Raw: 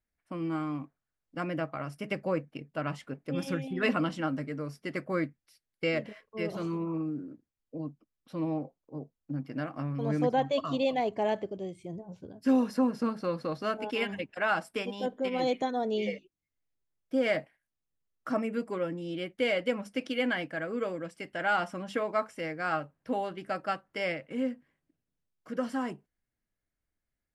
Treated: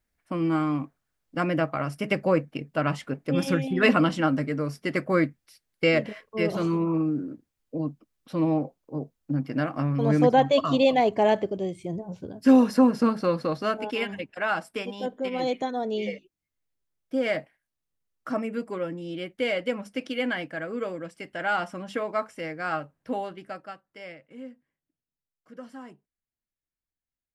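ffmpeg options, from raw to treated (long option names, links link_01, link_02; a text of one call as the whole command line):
ffmpeg -i in.wav -af "volume=8dB,afade=type=out:start_time=13.16:duration=0.92:silence=0.473151,afade=type=out:start_time=23.15:duration=0.59:silence=0.266073" out.wav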